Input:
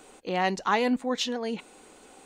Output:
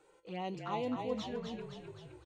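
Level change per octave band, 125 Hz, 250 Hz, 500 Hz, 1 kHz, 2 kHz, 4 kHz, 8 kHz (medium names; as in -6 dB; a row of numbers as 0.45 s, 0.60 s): -4.0 dB, -10.0 dB, -9.0 dB, -12.5 dB, -18.5 dB, -15.0 dB, -19.5 dB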